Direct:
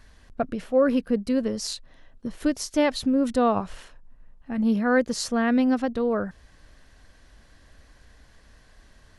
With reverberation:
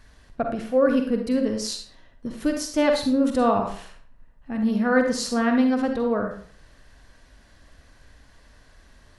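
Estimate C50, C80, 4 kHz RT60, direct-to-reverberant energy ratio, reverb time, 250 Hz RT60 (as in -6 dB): 5.0 dB, 10.0 dB, 0.40 s, 3.5 dB, 0.50 s, 0.45 s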